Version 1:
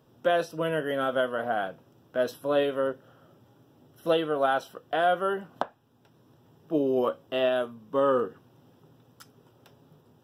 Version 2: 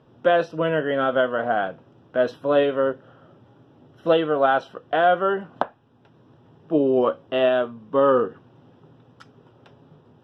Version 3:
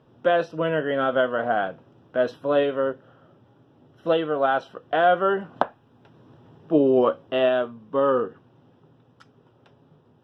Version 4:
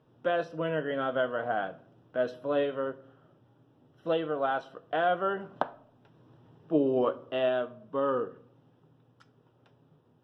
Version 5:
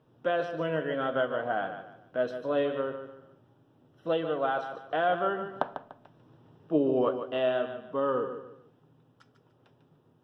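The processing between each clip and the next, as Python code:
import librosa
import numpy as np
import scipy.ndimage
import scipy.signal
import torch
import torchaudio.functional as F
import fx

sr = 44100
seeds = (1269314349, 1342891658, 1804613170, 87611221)

y1 = scipy.signal.sosfilt(scipy.signal.butter(2, 3200.0, 'lowpass', fs=sr, output='sos'), x)
y1 = y1 * librosa.db_to_amplitude(6.0)
y2 = fx.rider(y1, sr, range_db=10, speed_s=2.0)
y2 = y2 * librosa.db_to_amplitude(-1.5)
y3 = fx.room_shoebox(y2, sr, seeds[0], volume_m3=1000.0, walls='furnished', distance_m=0.49)
y3 = y3 * librosa.db_to_amplitude(-7.5)
y4 = fx.echo_feedback(y3, sr, ms=147, feedback_pct=31, wet_db=-9.5)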